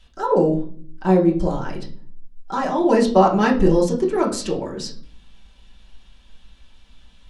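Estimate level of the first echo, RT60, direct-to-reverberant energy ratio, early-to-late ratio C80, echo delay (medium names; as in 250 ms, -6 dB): no echo, 0.45 s, -3.0 dB, 15.0 dB, no echo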